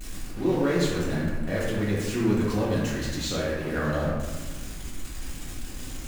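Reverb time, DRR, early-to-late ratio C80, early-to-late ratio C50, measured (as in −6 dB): 1.3 s, −8.0 dB, 2.0 dB, −0.5 dB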